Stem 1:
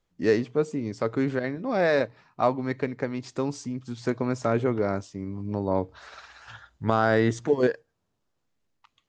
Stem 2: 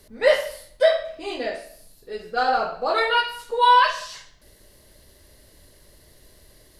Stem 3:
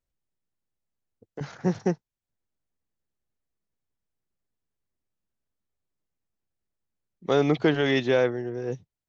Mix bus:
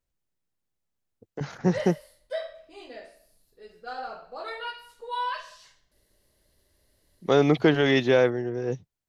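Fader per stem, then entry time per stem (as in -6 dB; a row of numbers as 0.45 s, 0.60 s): mute, -15.0 dB, +2.0 dB; mute, 1.50 s, 0.00 s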